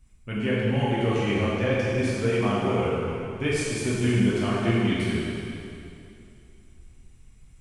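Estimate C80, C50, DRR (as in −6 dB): −1.5 dB, −3.0 dB, −8.5 dB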